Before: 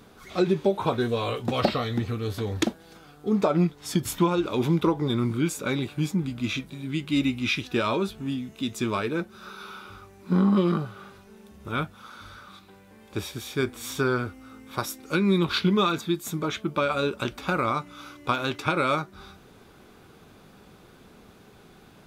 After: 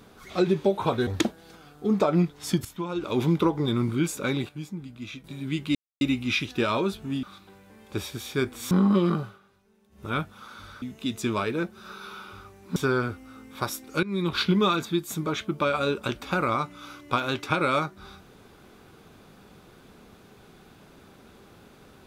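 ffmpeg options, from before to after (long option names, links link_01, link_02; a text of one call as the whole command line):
ffmpeg -i in.wav -filter_complex "[0:a]asplit=13[link_01][link_02][link_03][link_04][link_05][link_06][link_07][link_08][link_09][link_10][link_11][link_12][link_13];[link_01]atrim=end=1.072[link_14];[link_02]atrim=start=2.488:end=4.07,asetpts=PTS-STARTPTS,afade=type=out:start_time=1.578:duration=0.004:curve=hsin:silence=0.211349[link_15];[link_03]atrim=start=4.07:end=5.912,asetpts=PTS-STARTPTS,afade=type=in:duration=0.49:curve=qua:silence=0.211349[link_16];[link_04]atrim=start=5.908:end=6.662,asetpts=PTS-STARTPTS,volume=-10dB[link_17];[link_05]atrim=start=6.658:end=7.17,asetpts=PTS-STARTPTS,afade=type=out:start_time=0.508:duration=0.004:curve=hsin,apad=pad_dur=0.26[link_18];[link_06]atrim=start=7.17:end=8.392,asetpts=PTS-STARTPTS,afade=type=in:duration=0.004:curve=hsin[link_19];[link_07]atrim=start=12.438:end=13.922[link_20];[link_08]atrim=start=10.328:end=11.01,asetpts=PTS-STARTPTS,afade=type=out:start_time=0.532:duration=0.15:silence=0.188365[link_21];[link_09]atrim=start=11.01:end=11.52,asetpts=PTS-STARTPTS,volume=-14.5dB[link_22];[link_10]atrim=start=11.52:end=12.442,asetpts=PTS-STARTPTS,afade=type=in:duration=0.15:silence=0.188365[link_23];[link_11]atrim=start=8.388:end=10.332[link_24];[link_12]atrim=start=13.918:end=15.19,asetpts=PTS-STARTPTS,afade=type=out:start_time=1.268:duration=0.004:curve=hsin:silence=0.133352[link_25];[link_13]atrim=start=15.19,asetpts=PTS-STARTPTS,afade=type=in:duration=0.35:silence=0.133352[link_26];[link_15][link_16]concat=n=2:v=0:a=1[link_27];[link_14][link_27]acrossfade=duration=0.004:curve1=hsin:curve2=hsin[link_28];[link_28][link_17]acrossfade=duration=0.004:curve1=hsin:curve2=hsin[link_29];[link_18][link_19]concat=n=2:v=0:a=1[link_30];[link_29][link_30]acrossfade=duration=0.004:curve1=hsin:curve2=hsin[link_31];[link_31][link_20]acrossfade=duration=0.004:curve1=hsin:curve2=hsin[link_32];[link_21][link_22][link_23]concat=n=3:v=0:a=1[link_33];[link_32][link_33]acrossfade=duration=0.004:curve1=hsin:curve2=hsin[link_34];[link_34][link_24]acrossfade=duration=0.004:curve1=hsin:curve2=hsin[link_35];[link_25][link_26]concat=n=2:v=0:a=1[link_36];[link_35][link_36]acrossfade=duration=0.004:curve1=hsin:curve2=hsin" out.wav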